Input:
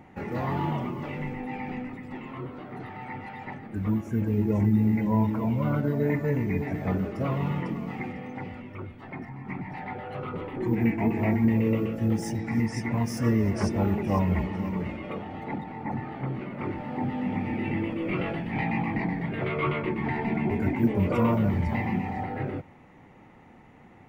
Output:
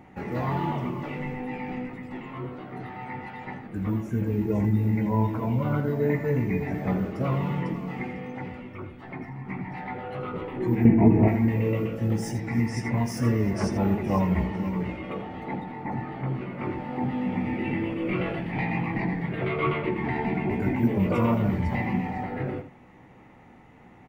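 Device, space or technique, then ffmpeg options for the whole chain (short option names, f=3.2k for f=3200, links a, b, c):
slapback doubling: -filter_complex "[0:a]asplit=3[a][b][c];[b]adelay=16,volume=-8dB[d];[c]adelay=82,volume=-11dB[e];[a][d][e]amix=inputs=3:normalize=0,asettb=1/sr,asplit=3[f][g][h];[f]atrim=end=10.854[i];[g]atrim=start=10.85:end=11.28,asetpts=PTS-STARTPTS,afade=t=in:d=0.004:c=qsin,afade=t=out:st=0.426:d=0.004:c=qsin,tiltshelf=f=1.1k:g=9.5[j];[h]atrim=start=11.276[k];[i][j]acrossfade=d=0.004:c1=hsin:c2=qsin[l];[l][k]acrossfade=d=0.004:c1=qsin:c2=hsin"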